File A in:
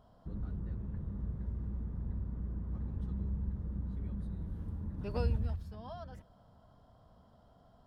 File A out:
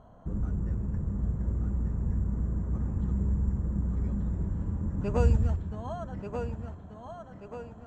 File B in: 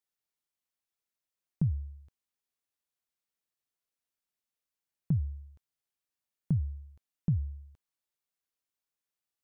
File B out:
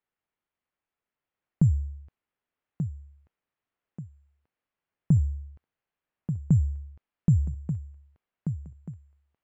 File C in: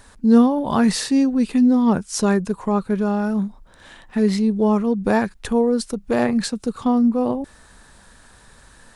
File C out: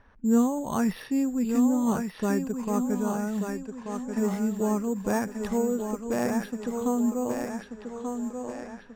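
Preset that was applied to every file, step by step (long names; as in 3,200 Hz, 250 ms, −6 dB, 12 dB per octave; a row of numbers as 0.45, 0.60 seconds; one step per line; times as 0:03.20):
bad sample-rate conversion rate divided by 6×, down filtered, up hold
feedback echo with a high-pass in the loop 1,185 ms, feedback 53%, high-pass 190 Hz, level −5 dB
low-pass that shuts in the quiet parts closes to 2,600 Hz, open at −17.5 dBFS
normalise the peak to −12 dBFS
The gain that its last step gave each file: +8.5, +7.5, −8.5 decibels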